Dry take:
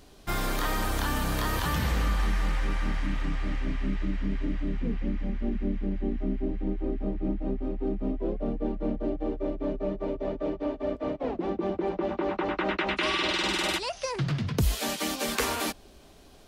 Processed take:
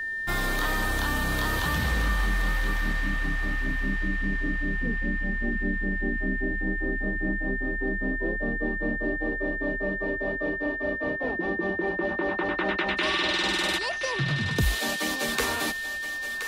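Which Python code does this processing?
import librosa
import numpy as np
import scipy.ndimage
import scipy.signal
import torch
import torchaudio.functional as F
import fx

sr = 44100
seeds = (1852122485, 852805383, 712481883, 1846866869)

y = x + 10.0 ** (-29.0 / 20.0) * np.sin(2.0 * np.pi * 1800.0 * np.arange(len(x)) / sr)
y = fx.echo_thinned(y, sr, ms=1023, feedback_pct=23, hz=830.0, wet_db=-9)
y = fx.dynamic_eq(y, sr, hz=3800.0, q=4.3, threshold_db=-50.0, ratio=4.0, max_db=4)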